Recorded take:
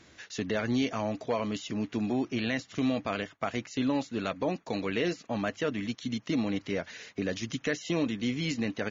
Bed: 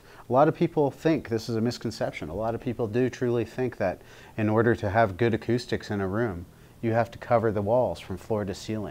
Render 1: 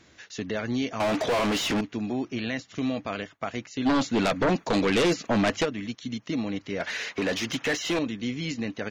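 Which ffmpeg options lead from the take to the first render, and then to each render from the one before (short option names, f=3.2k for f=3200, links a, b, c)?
-filter_complex "[0:a]asettb=1/sr,asplit=3[a][b][c];[a]atrim=end=1.004[d];[b]atrim=start=1:end=1.81,asetpts=PTS-STARTPTS,afade=t=in:d=0.004:c=qsin,afade=t=out:st=0.806:d=0.004:c=qsin,asplit=2[e][f];[f]highpass=f=720:p=1,volume=34dB,asoftclip=type=tanh:threshold=-18dB[g];[e][g]amix=inputs=2:normalize=0,lowpass=f=3.5k:p=1,volume=-6dB[h];[c]atrim=start=1.806[i];[d][h]acrossfade=d=0.004:c1=hsin:c2=qsin[j];[j][i]acrossfade=d=0.004:c1=qsin:c2=hsin,asplit=3[k][l][m];[k]afade=t=out:st=3.85:d=0.02[n];[l]aeval=exprs='0.126*sin(PI/2*2.51*val(0)/0.126)':c=same,afade=t=in:st=3.85:d=0.02,afade=t=out:st=5.64:d=0.02[o];[m]afade=t=in:st=5.64:d=0.02[p];[n][o][p]amix=inputs=3:normalize=0,asettb=1/sr,asplit=3[q][r][s];[q]atrim=end=6.804[t];[r]atrim=start=6.8:end=7.99,asetpts=PTS-STARTPTS,afade=t=in:d=0.004:c=qsin,afade=t=out:st=1.186:d=0.004:c=qsin,asplit=2[u][v];[v]highpass=f=720:p=1,volume=23dB,asoftclip=type=tanh:threshold=-18dB[w];[u][w]amix=inputs=2:normalize=0,lowpass=f=3.2k:p=1,volume=-6dB[x];[s]atrim=start=7.986[y];[t][x]acrossfade=d=0.004:c1=hsin:c2=qsin[z];[z][y]acrossfade=d=0.004:c1=qsin:c2=hsin"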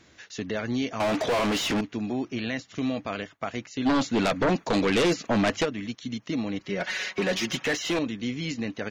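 -filter_complex "[0:a]asettb=1/sr,asplit=3[a][b][c];[a]atrim=end=6.594[d];[b]atrim=start=6.59:end=7.64,asetpts=PTS-STARTPTS,afade=t=in:d=0.004:c=qsin,afade=t=out:st=1.046:d=0.004:c=qsin,aecho=1:1:5.4:0.65,atrim=end_sample=46305[e];[c]atrim=start=7.636[f];[d][e]acrossfade=d=0.004:c1=hsin:c2=qsin[g];[g][f]acrossfade=d=0.004:c1=qsin:c2=hsin"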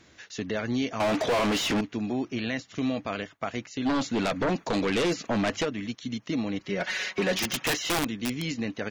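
-filter_complex "[0:a]asettb=1/sr,asplit=3[a][b][c];[a]atrim=end=3.724[d];[b]atrim=start=3.72:end=5.66,asetpts=PTS-STARTPTS,afade=t=in:d=0.004:c=qsin,afade=t=out:st=1.936:d=0.004:c=qsin,acompressor=threshold=-28dB:ratio=1.5:attack=3.2:release=140:knee=1:detection=peak[e];[c]atrim=start=5.656[f];[d][e]acrossfade=d=0.004:c1=hsin:c2=qsin[g];[g][f]acrossfade=d=0.004:c1=qsin:c2=hsin,asettb=1/sr,asplit=3[h][i][j];[h]atrim=end=7.384[k];[i]atrim=start=7.38:end=8.51,asetpts=PTS-STARTPTS,afade=t=in:d=0.004:c=qsin,afade=t=out:st=1.126:d=0.004:c=qsin,aeval=exprs='(mod(11.2*val(0)+1,2)-1)/11.2':c=same[l];[j]atrim=start=8.506[m];[k][l]acrossfade=d=0.004:c1=hsin:c2=qsin[n];[n][m]acrossfade=d=0.004:c1=qsin:c2=hsin"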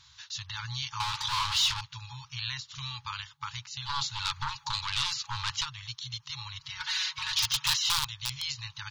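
-af "afftfilt=real='re*(1-between(b*sr/4096,140,830))':imag='im*(1-between(b*sr/4096,140,830))':win_size=4096:overlap=0.75,equalizer=f=250:t=o:w=1:g=-7,equalizer=f=500:t=o:w=1:g=-9,equalizer=f=1k:t=o:w=1:g=4,equalizer=f=2k:t=o:w=1:g=-10,equalizer=f=4k:t=o:w=1:g=10,equalizer=f=16k:t=o:w=1:g=-3"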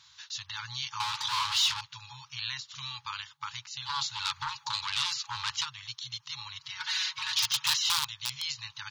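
-af "highpass=f=300:p=1"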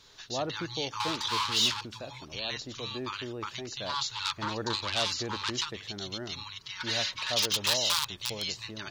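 -filter_complex "[1:a]volume=-13.5dB[a];[0:a][a]amix=inputs=2:normalize=0"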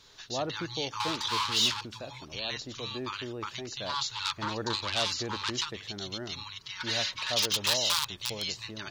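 -af anull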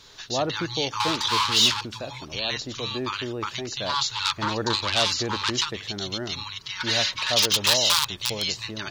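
-af "volume=7dB"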